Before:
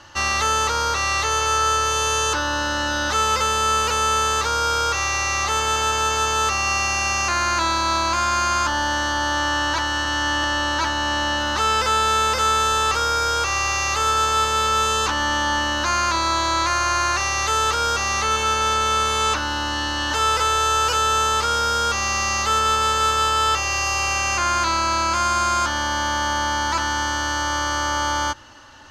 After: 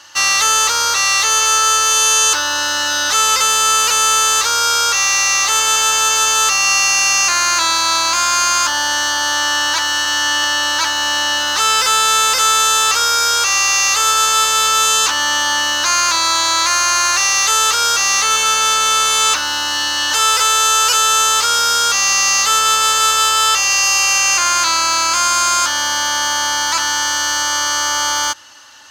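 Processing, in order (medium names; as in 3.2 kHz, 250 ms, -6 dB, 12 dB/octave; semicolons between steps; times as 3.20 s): tilt EQ +4 dB/octave; in parallel at -11 dB: bit crusher 5-bit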